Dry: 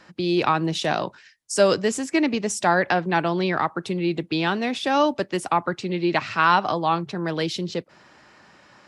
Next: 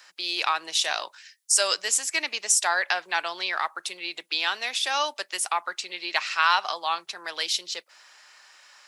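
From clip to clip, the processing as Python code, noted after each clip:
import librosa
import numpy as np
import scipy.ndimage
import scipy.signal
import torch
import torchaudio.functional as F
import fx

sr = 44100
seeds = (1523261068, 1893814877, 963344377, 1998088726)

y = scipy.signal.sosfilt(scipy.signal.butter(2, 650.0, 'highpass', fs=sr, output='sos'), x)
y = fx.tilt_eq(y, sr, slope=4.5)
y = F.gain(torch.from_numpy(y), -4.0).numpy()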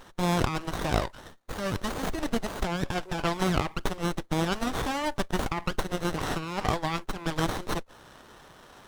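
y = fx.over_compress(x, sr, threshold_db=-29.0, ratio=-1.0)
y = fx.running_max(y, sr, window=17)
y = F.gain(torch.from_numpy(y), 2.5).numpy()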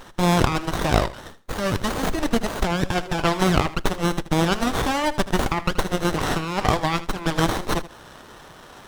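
y = fx.echo_feedback(x, sr, ms=79, feedback_pct=16, wet_db=-15.5)
y = F.gain(torch.from_numpy(y), 7.0).numpy()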